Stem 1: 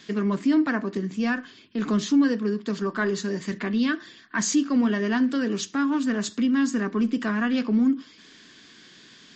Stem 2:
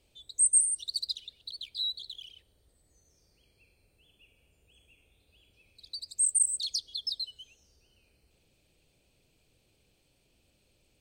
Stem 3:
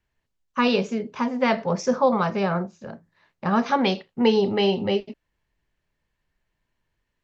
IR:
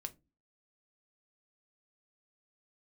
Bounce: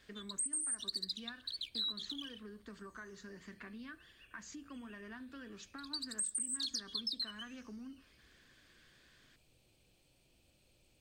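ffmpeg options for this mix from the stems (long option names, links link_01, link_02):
-filter_complex "[0:a]volume=-20dB[link_01];[1:a]bandreject=frequency=430:width=12,alimiter=level_in=0.5dB:limit=-24dB:level=0:latency=1:release=164,volume=-0.5dB,volume=-3dB,asplit=2[link_02][link_03];[link_03]volume=-7dB[link_04];[link_01]equalizer=frequency=1500:width=1:gain=8,acompressor=threshold=-47dB:ratio=6,volume=0dB[link_05];[3:a]atrim=start_sample=2205[link_06];[link_04][link_06]afir=irnorm=-1:irlink=0[link_07];[link_02][link_05][link_07]amix=inputs=3:normalize=0,acompressor=threshold=-35dB:ratio=6"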